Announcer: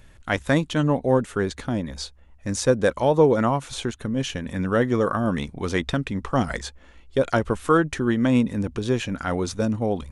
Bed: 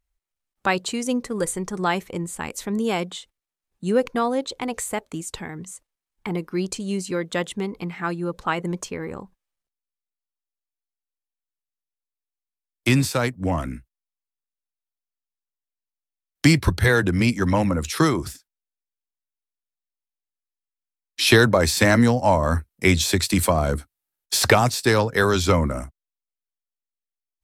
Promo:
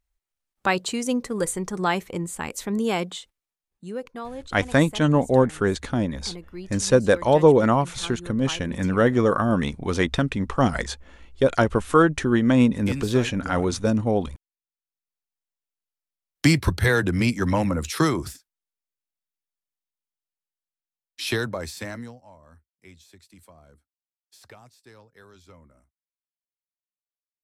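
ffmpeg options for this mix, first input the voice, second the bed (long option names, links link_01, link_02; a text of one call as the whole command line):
ffmpeg -i stem1.wav -i stem2.wav -filter_complex "[0:a]adelay=4250,volume=2dB[link_01];[1:a]volume=10dB,afade=type=out:start_time=3.42:duration=0.47:silence=0.251189,afade=type=in:start_time=14.72:duration=0.45:silence=0.298538,afade=type=out:start_time=19.61:duration=2.64:silence=0.0316228[link_02];[link_01][link_02]amix=inputs=2:normalize=0" out.wav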